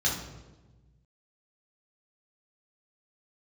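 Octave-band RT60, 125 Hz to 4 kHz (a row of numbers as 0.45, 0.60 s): 2.0, 1.6, 1.3, 1.0, 0.85, 0.80 s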